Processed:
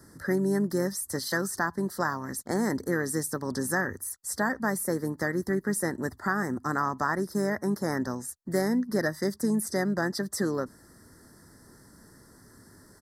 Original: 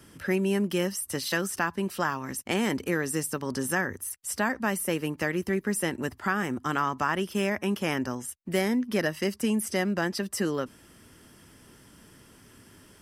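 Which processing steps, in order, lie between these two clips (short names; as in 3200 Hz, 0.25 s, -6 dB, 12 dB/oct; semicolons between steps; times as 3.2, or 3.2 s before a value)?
elliptic band-stop 1900–4200 Hz, stop band 40 dB; harmoniser -5 st -17 dB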